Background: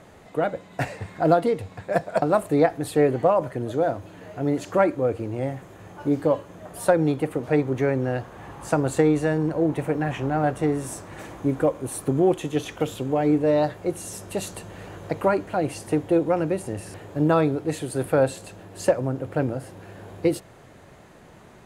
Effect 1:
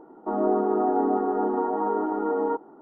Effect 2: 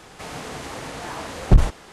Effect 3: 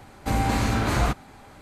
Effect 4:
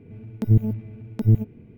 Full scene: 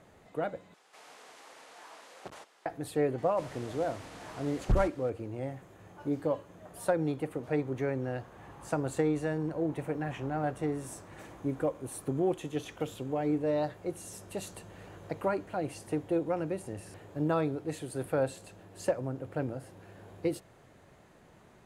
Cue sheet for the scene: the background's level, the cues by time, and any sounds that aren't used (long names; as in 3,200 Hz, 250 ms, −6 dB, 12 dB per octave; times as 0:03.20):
background −9.5 dB
0:00.74: overwrite with 2 −17 dB + high-pass filter 500 Hz
0:03.18: mix in 2 −14 dB
not used: 1, 3, 4